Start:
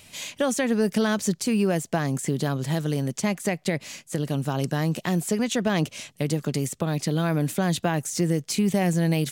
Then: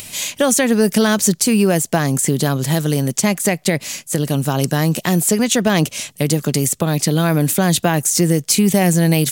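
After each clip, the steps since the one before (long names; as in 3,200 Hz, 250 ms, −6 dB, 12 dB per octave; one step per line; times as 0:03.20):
high-shelf EQ 7,000 Hz +11.5 dB
upward compression, threshold −37 dBFS
level +8 dB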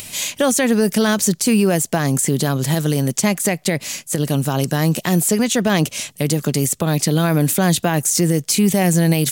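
brickwall limiter −7 dBFS, peak gain reduction 5.5 dB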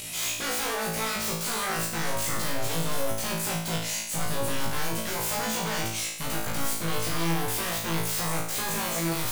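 wave folding −22 dBFS
on a send: flutter between parallel walls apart 3.1 metres, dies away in 0.68 s
on the sum: level −7 dB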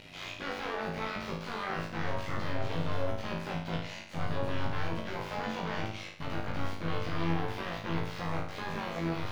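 amplitude modulation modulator 93 Hz, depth 35%
dead-zone distortion −46 dBFS
high-frequency loss of the air 280 metres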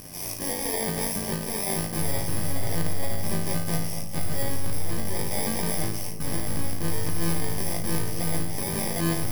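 samples in bit-reversed order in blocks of 32 samples
feedback echo with a low-pass in the loop 236 ms, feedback 75%, low-pass 860 Hz, level −12.5 dB
sine wavefolder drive 5 dB, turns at −16.5 dBFS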